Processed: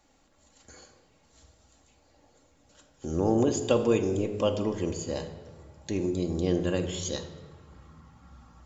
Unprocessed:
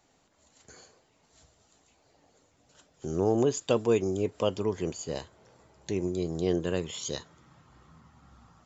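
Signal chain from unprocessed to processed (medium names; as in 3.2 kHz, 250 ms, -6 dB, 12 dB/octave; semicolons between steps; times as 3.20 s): bass shelf 76 Hz +7.5 dB; reverberation RT60 1.3 s, pre-delay 4 ms, DRR 4.5 dB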